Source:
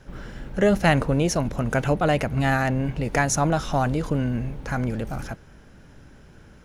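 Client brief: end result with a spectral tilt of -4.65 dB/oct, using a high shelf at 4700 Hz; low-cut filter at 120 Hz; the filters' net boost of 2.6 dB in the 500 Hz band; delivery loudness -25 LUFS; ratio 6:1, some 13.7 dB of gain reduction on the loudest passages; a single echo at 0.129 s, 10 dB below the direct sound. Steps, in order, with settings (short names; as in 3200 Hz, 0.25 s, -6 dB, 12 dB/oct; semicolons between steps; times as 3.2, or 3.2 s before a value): HPF 120 Hz; bell 500 Hz +3.5 dB; high shelf 4700 Hz -7 dB; compressor 6:1, threshold -28 dBFS; echo 0.129 s -10 dB; gain +7.5 dB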